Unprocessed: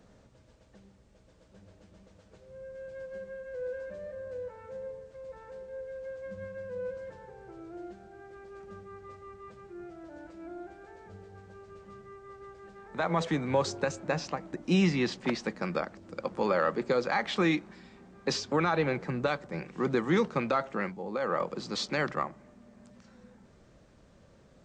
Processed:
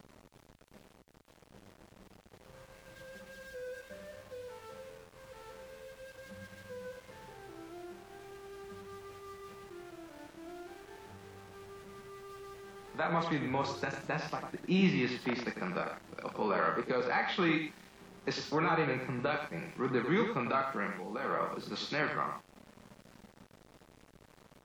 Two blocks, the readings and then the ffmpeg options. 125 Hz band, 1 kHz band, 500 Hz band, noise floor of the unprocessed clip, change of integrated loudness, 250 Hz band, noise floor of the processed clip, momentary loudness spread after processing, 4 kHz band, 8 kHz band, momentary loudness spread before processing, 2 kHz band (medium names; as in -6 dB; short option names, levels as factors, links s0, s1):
-3.5 dB, -1.5 dB, -5.0 dB, -60 dBFS, -2.5 dB, -3.5 dB, -63 dBFS, 20 LU, -4.0 dB, -8.5 dB, 21 LU, -1.0 dB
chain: -filter_complex "[0:a]lowpass=3300,highshelf=f=2300:g=3.5,bandreject=f=540:w=12,aecho=1:1:99:0.447,acrossover=split=600[s0][s1];[s0]acompressor=mode=upward:threshold=0.00794:ratio=2.5[s2];[s1]asplit=2[s3][s4];[s4]adelay=33,volume=0.75[s5];[s3][s5]amix=inputs=2:normalize=0[s6];[s2][s6]amix=inputs=2:normalize=0,aeval=exprs='val(0)*gte(abs(val(0)),0.00473)':c=same,equalizer=f=71:w=4.7:g=-8.5,volume=0.596" -ar 44100 -c:a wmav2 -b:a 64k